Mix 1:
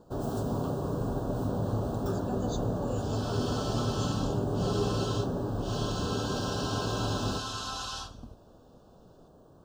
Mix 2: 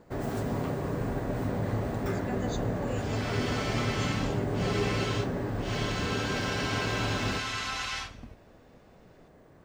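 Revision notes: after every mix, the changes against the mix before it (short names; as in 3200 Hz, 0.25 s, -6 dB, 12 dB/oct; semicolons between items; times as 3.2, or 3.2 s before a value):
master: remove Butterworth band-stop 2100 Hz, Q 1.1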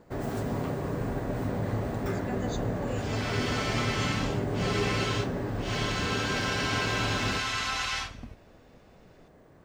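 second sound +3.0 dB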